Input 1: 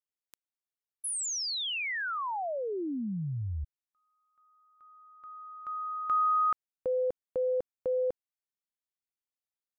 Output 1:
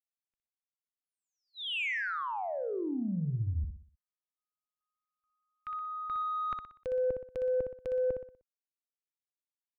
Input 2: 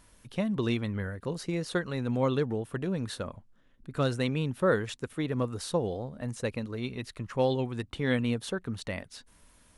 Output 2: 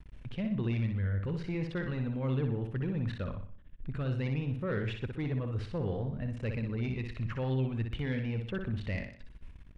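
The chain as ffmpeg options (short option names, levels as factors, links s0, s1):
-filter_complex "[0:a]acrossover=split=3600[s0][s1];[s1]acompressor=threshold=0.00447:ratio=4:attack=1:release=60[s2];[s0][s2]amix=inputs=2:normalize=0,lowpass=9600,aemphasis=mode=reproduction:type=riaa,agate=range=0.0178:threshold=0.00562:ratio=16:release=21:detection=rms,equalizer=f=2500:t=o:w=1.2:g=11.5,areverse,acompressor=threshold=0.0355:ratio=12:attack=38:release=45:knee=6:detection=peak,areverse,asoftclip=type=tanh:threshold=0.0841,asplit=2[s3][s4];[s4]aecho=0:1:61|122|183|244|305:0.501|0.205|0.0842|0.0345|0.0142[s5];[s3][s5]amix=inputs=2:normalize=0,volume=0.631"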